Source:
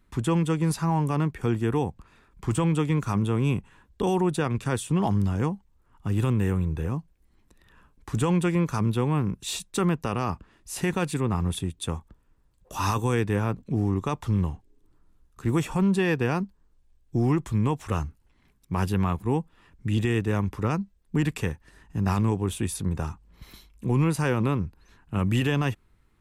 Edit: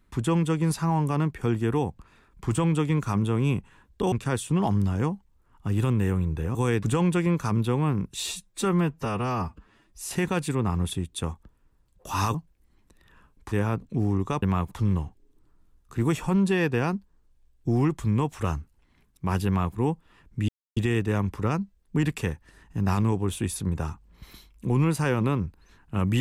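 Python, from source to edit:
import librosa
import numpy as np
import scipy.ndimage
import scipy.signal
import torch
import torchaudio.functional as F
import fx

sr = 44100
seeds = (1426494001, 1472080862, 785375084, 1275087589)

y = fx.edit(x, sr, fx.cut(start_s=4.12, length_s=0.4),
    fx.swap(start_s=6.95, length_s=1.17, other_s=13.0, other_length_s=0.28),
    fx.stretch_span(start_s=9.49, length_s=1.27, factor=1.5),
    fx.duplicate(start_s=18.94, length_s=0.29, to_s=14.19),
    fx.insert_silence(at_s=19.96, length_s=0.28), tone=tone)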